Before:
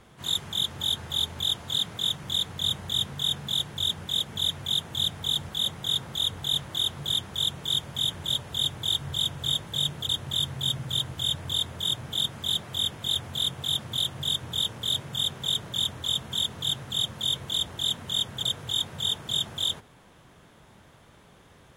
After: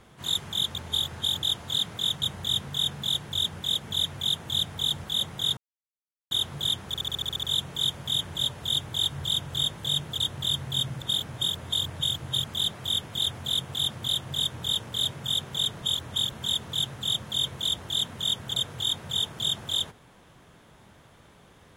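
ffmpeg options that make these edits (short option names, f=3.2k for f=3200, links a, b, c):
-filter_complex "[0:a]asplit=18[a][b][c][d][e][f][g][h][i][j][k][l][m][n][o][p][q][r];[a]atrim=end=0.752[s];[b]atrim=start=0.748:end=1.432,asetpts=PTS-STARTPTS,areverse[t];[c]atrim=start=1.428:end=2.222[u];[d]atrim=start=2.668:end=6.02,asetpts=PTS-STARTPTS,afade=t=out:st=3.348:d=0.004:c=hsin[v];[e]atrim=start=6.02:end=6.76,asetpts=PTS-STARTPTS,volume=0[w];[f]atrim=start=6.76:end=7.392,asetpts=PTS-STARTPTS,afade=t=in:d=0.004:c=hsin[x];[g]atrim=start=7.318:end=7.392[y];[h]atrim=start=7.318:end=7.392[z];[i]atrim=start=7.318:end=7.392[aa];[j]atrim=start=7.318:end=7.392[ab];[k]atrim=start=7.318:end=7.392[ac];[l]atrim=start=7.318:end=7.392[ad];[m]atrim=start=7.318:end=7.392[ae];[n]atrim=start=7.318:end=10.912[af];[o]atrim=start=10.908:end=12.332,asetpts=PTS-STARTPTS,areverse[ag];[p]atrim=start=12.328:end=15.712[ah];[q]atrim=start=15.708:end=16.212,asetpts=PTS-STARTPTS,areverse[ai];[r]atrim=start=16.208[aj];[s][t]acrossfade=d=0.004:c1=hsin:c2=hsin[ak];[ak][u]acrossfade=d=0.004:c1=hsin:c2=hsin[al];[v][w][x]concat=n=3:v=0:a=1[am];[al][am]acrossfade=d=0.004:c1=hsin:c2=hsin[an];[an][y]acrossfade=d=0.004:c1=hsin:c2=hsin[ao];[ao][z]acrossfade=d=0.004:c1=hsin:c2=hsin[ap];[ap][aa]acrossfade=d=0.004:c1=hsin:c2=hsin[aq];[aq][ab]acrossfade=d=0.004:c1=hsin:c2=hsin[ar];[ar][ac]acrossfade=d=0.004:c1=hsin:c2=hsin[as];[as][ad]acrossfade=d=0.004:c1=hsin:c2=hsin[at];[at][ae]acrossfade=d=0.004:c1=hsin:c2=hsin[au];[au][af]acrossfade=d=0.004:c1=hsin:c2=hsin[av];[av][ag]acrossfade=d=0.004:c1=hsin:c2=hsin[aw];[aw][ah]acrossfade=d=0.004:c1=hsin:c2=hsin[ax];[ax][ai]acrossfade=d=0.004:c1=hsin:c2=hsin[ay];[ay][aj]acrossfade=d=0.004:c1=hsin:c2=hsin"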